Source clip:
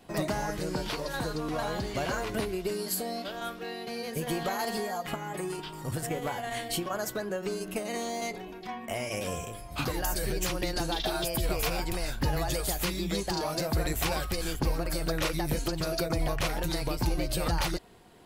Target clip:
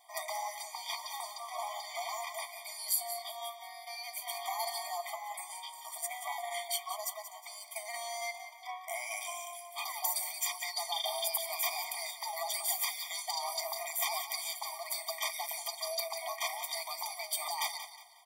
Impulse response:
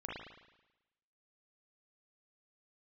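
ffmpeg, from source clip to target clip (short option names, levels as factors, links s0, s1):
-filter_complex "[0:a]highpass=f=790:p=1,highshelf=f=9400:g=7.5,asettb=1/sr,asplit=3[s0][s1][s2];[s0]atrim=end=6.774[s3];[s1]atrim=start=6.77:end=8.01,asetpts=PTS-STARTPTS,afade=t=in:d=0.004:c=qsin,afade=t=out:st=1.236:d=0.004:c=qsin,aeval=exprs='sgn(val(0))*max(abs(val(0))-0.00168,0)':c=same[s4];[s2]atrim=start=8.006[s5];[s3][s4]acrossfade=d=0.004:c1=hsin:c2=qsin[s6];[s6][s5]acrossfade=d=0.004:c1=qsin:c2=hsin,asplit=2[s7][s8];[s8]aecho=0:1:181|362|543|724:0.282|0.093|0.0307|0.0101[s9];[s7][s9]amix=inputs=2:normalize=0,afftfilt=real='re*eq(mod(floor(b*sr/1024/620),2),1)':imag='im*eq(mod(floor(b*sr/1024/620),2),1)':win_size=1024:overlap=0.75"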